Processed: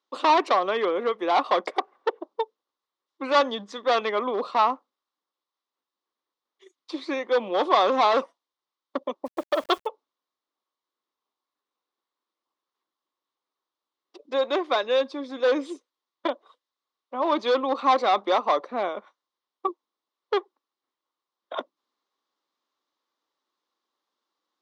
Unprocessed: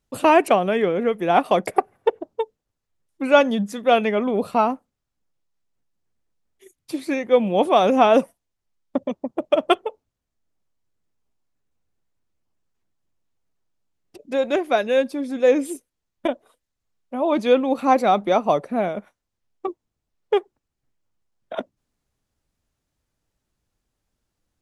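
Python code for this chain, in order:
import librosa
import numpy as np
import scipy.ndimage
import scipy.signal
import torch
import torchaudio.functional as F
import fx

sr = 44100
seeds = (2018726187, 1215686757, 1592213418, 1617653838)

y = np.clip(10.0 ** (14.5 / 20.0) * x, -1.0, 1.0) / 10.0 ** (14.5 / 20.0)
y = fx.cabinet(y, sr, low_hz=340.0, low_slope=24, high_hz=5400.0, hz=(430.0, 660.0, 1100.0, 1600.0, 2500.0, 3700.0), db=(-4, -6, 10, -4, -6, 5))
y = fx.quant_dither(y, sr, seeds[0], bits=8, dither='none', at=(9.25, 9.86), fade=0.02)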